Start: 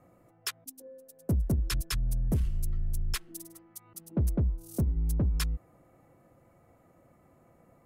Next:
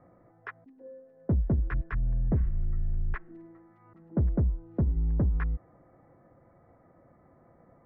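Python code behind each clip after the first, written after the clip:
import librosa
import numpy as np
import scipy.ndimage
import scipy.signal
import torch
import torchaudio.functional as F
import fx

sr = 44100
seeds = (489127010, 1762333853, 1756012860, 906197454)

y = scipy.signal.sosfilt(scipy.signal.cheby1(4, 1.0, 1900.0, 'lowpass', fs=sr, output='sos'), x)
y = y * 10.0 ** (2.5 / 20.0)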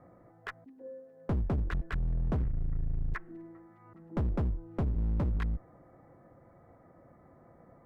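y = fx.clip_asym(x, sr, top_db=-38.0, bottom_db=-24.5)
y = y * 10.0 ** (1.5 / 20.0)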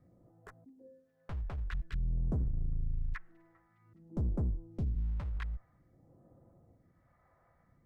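y = fx.phaser_stages(x, sr, stages=2, low_hz=250.0, high_hz=2500.0, hz=0.51, feedback_pct=50)
y = y * 10.0 ** (-5.0 / 20.0)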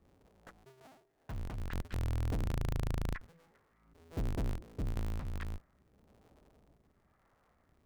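y = fx.cycle_switch(x, sr, every=2, mode='inverted')
y = y * 10.0 ** (-2.0 / 20.0)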